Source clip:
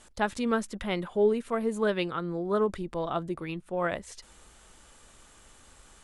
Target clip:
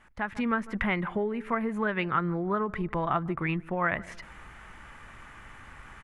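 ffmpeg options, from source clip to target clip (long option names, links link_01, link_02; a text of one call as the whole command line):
ffmpeg -i in.wav -filter_complex "[0:a]highshelf=frequency=6500:gain=-10,asplit=2[link_01][link_02];[link_02]adelay=149,lowpass=frequency=840:poles=1,volume=-21.5dB,asplit=2[link_03][link_04];[link_04]adelay=149,lowpass=frequency=840:poles=1,volume=0.38,asplit=2[link_05][link_06];[link_06]adelay=149,lowpass=frequency=840:poles=1,volume=0.38[link_07];[link_01][link_03][link_05][link_07]amix=inputs=4:normalize=0,acompressor=threshold=-33dB:ratio=4,equalizer=frequency=125:width_type=o:width=1:gain=6,equalizer=frequency=500:width_type=o:width=1:gain=-6,equalizer=frequency=1000:width_type=o:width=1:gain=4,equalizer=frequency=2000:width_type=o:width=1:gain=11,equalizer=frequency=4000:width_type=o:width=1:gain=-9,equalizer=frequency=8000:width_type=o:width=1:gain=-10,dynaudnorm=framelen=180:gausssize=3:maxgain=10.5dB,volume=-4dB" out.wav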